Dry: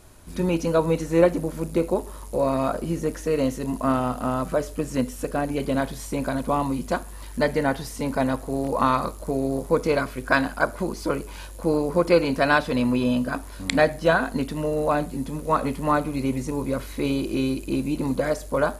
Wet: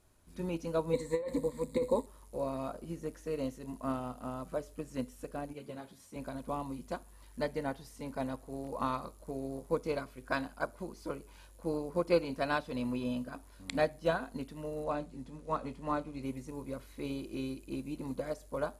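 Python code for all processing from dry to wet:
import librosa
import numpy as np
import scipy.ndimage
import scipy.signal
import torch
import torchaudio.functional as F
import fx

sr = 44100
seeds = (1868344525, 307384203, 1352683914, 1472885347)

y = fx.chain(x, sr, fx.ripple_eq(per_octave=1.0, db=16),
    fx.over_compress(threshold_db=-18.0, ratio=-1.0), at=(0.93, 2.06))
y = fx.chain(y, sr, fx.highpass(hz=72.0, slope=24),
    fx.ensemble(), at=(5.53, 6.16))
y = fx.chain(y, sr, fx.lowpass(hz=7500.0, slope=12),
    fx.doubler(ms=24.0, db=-13.0), at=(14.84, 16.23))
y = fx.dynamic_eq(y, sr, hz=1700.0, q=1.8, threshold_db=-38.0, ratio=4.0, max_db=-4)
y = fx.upward_expand(y, sr, threshold_db=-30.0, expansion=1.5)
y = y * librosa.db_to_amplitude(-9.0)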